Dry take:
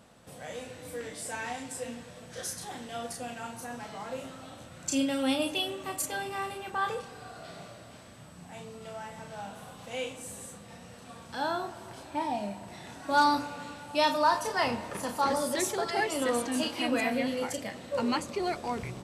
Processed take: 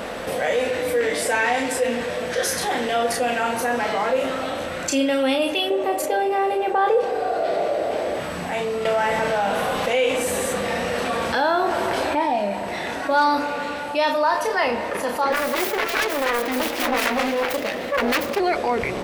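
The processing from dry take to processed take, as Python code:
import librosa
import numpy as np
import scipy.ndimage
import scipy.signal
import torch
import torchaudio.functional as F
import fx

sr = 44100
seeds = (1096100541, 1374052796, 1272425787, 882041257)

y = fx.band_shelf(x, sr, hz=510.0, db=10.5, octaves=1.7, at=(5.7, 8.2))
y = fx.env_flatten(y, sr, amount_pct=50, at=(8.85, 12.15))
y = fx.self_delay(y, sr, depth_ms=0.88, at=(15.32, 18.4))
y = fx.rider(y, sr, range_db=10, speed_s=2.0)
y = fx.graphic_eq(y, sr, hz=(125, 500, 2000, 8000), db=(-12, 7, 6, -7))
y = fx.env_flatten(y, sr, amount_pct=50)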